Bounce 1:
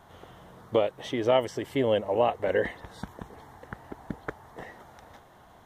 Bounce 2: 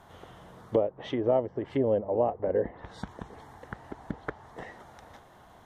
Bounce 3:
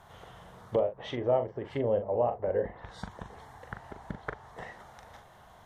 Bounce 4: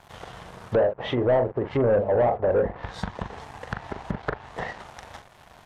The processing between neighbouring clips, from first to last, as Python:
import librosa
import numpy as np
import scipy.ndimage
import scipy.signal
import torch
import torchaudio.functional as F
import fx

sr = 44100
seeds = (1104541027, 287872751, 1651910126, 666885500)

y1 = fx.env_lowpass_down(x, sr, base_hz=700.0, full_db=-24.5)
y2 = fx.peak_eq(y1, sr, hz=290.0, db=-9.0, octaves=0.92)
y2 = fx.doubler(y2, sr, ms=41.0, db=-8)
y3 = fx.leveller(y2, sr, passes=3)
y3 = fx.env_lowpass_down(y3, sr, base_hz=1400.0, full_db=-22.0)